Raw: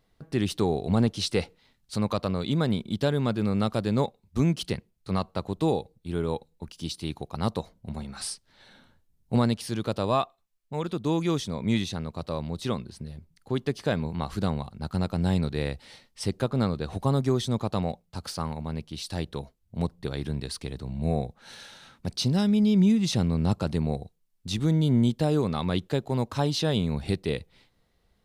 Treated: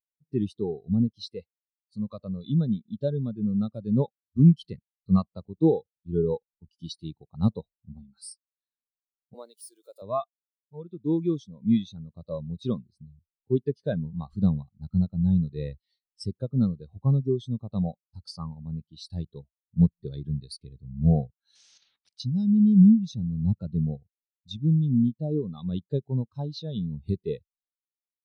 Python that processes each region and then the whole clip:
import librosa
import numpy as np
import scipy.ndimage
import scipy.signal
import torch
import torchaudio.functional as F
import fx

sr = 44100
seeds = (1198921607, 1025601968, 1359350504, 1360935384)

y = fx.chain(x, sr, fx.crossing_spikes(level_db=-27.5),
    fx.highpass(hz=350.0, slope=24), at=(9.34, 10.02))
y = fx.chain(y, sr, fx.level_steps(step_db=10),
    fx.air_absorb(metres=99.0),
    fx.spectral_comp(ratio=10.0), at=(21.55, 22.2))
y = fx.high_shelf(y, sr, hz=2600.0, db=11.5)
y = fx.rider(y, sr, range_db=4, speed_s=0.5)
y = fx.spectral_expand(y, sr, expansion=2.5)